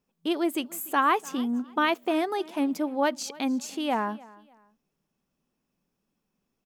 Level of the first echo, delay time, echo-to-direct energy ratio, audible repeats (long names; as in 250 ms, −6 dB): −22.0 dB, 296 ms, −21.5 dB, 2